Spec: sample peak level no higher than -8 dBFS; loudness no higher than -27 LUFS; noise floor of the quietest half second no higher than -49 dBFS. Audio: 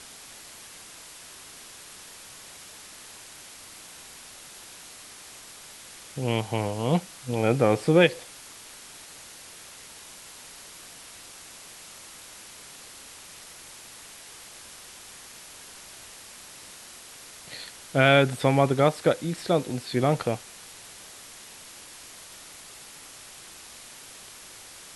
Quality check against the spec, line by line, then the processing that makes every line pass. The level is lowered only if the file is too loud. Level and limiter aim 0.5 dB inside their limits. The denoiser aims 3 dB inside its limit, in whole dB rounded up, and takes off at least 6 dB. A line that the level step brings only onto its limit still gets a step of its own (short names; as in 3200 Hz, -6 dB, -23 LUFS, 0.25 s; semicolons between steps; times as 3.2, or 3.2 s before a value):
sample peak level -4.5 dBFS: fail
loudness -24.0 LUFS: fail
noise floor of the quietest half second -46 dBFS: fail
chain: gain -3.5 dB; limiter -8.5 dBFS